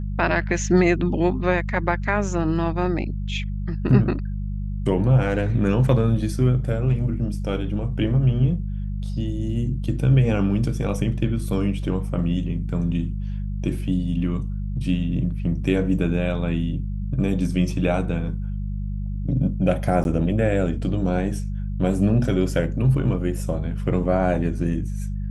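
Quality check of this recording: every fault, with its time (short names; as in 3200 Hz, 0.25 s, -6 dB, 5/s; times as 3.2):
hum 50 Hz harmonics 4 -27 dBFS
20.04–20.05 gap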